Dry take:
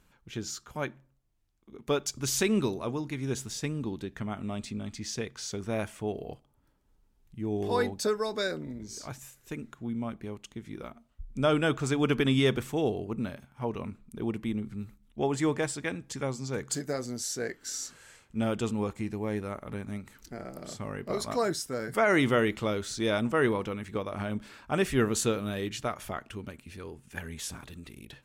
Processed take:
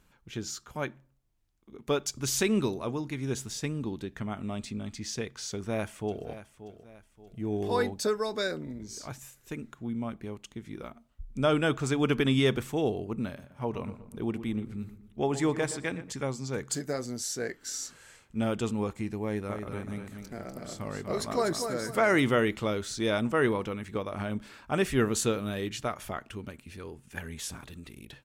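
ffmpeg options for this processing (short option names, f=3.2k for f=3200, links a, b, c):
-filter_complex "[0:a]asplit=2[a][b];[b]afade=t=in:st=5.5:d=0.01,afade=t=out:st=6.26:d=0.01,aecho=0:1:580|1160|1740|2320:0.211349|0.0845396|0.0338158|0.0135263[c];[a][c]amix=inputs=2:normalize=0,asettb=1/sr,asplit=3[d][e][f];[d]atrim=end=13.264[g];[e]atrim=start=13.26:end=16.1,asetpts=PTS-STARTPTS,afade=t=in:d=0.004:c=qsin,afade=t=out:st=2.836:d=0.004:c=qsin,asplit=2[h][i];[i]adelay=120,lowpass=f=2k:p=1,volume=-12.5dB,asplit=2[j][k];[k]adelay=120,lowpass=f=2k:p=1,volume=0.48,asplit=2[l][m];[m]adelay=120,lowpass=f=2k:p=1,volume=0.48,asplit=2[n][o];[o]adelay=120,lowpass=f=2k:p=1,volume=0.48,asplit=2[p][q];[q]adelay=120,lowpass=f=2k:p=1,volume=0.48[r];[h][j][l][n][p][r]amix=inputs=6:normalize=0,atrim=end_sample=125244[s];[f]atrim=start=16.096[t];[g][s]acrossfade=d=0.004:c1=hsin:c2=qsin[u];[u][t]acrossfade=d=0.004:c1=qsin:c2=hsin,asettb=1/sr,asplit=3[v][w][x];[v]atrim=end=19.254[y];[w]atrim=start=19.25:end=22.2,asetpts=PTS-STARTPTS,afade=t=in:d=0.004:c=qsin,afade=t=out:st=2.946:d=0.004:c=qsin,aecho=1:1:245|490|735|980:0.473|0.147|0.0455|0.0141,atrim=end_sample=130095[z];[x]atrim=start=22.196[aa];[y][z]acrossfade=d=0.004:c1=hsin:c2=qsin[ab];[ab][aa]acrossfade=d=0.004:c1=qsin:c2=hsin"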